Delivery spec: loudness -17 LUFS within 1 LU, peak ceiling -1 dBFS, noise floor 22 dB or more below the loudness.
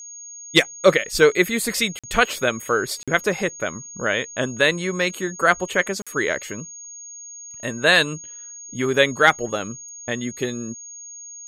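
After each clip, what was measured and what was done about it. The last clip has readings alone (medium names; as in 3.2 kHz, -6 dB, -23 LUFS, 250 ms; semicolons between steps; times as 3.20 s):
dropouts 3; longest dropout 46 ms; steady tone 6.6 kHz; tone level -36 dBFS; loudness -21.0 LUFS; peak level -2.5 dBFS; loudness target -17.0 LUFS
-> interpolate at 1.99/3.03/6.02 s, 46 ms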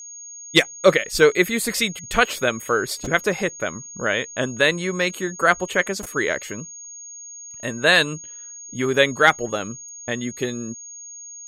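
dropouts 0; steady tone 6.6 kHz; tone level -36 dBFS
-> band-stop 6.6 kHz, Q 30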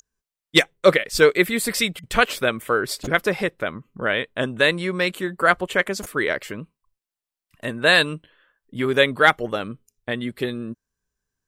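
steady tone not found; loudness -21.0 LUFS; peak level -2.5 dBFS; loudness target -17.0 LUFS
-> trim +4 dB; peak limiter -1 dBFS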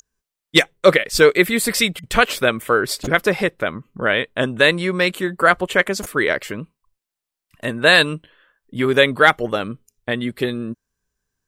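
loudness -17.5 LUFS; peak level -1.0 dBFS; noise floor -86 dBFS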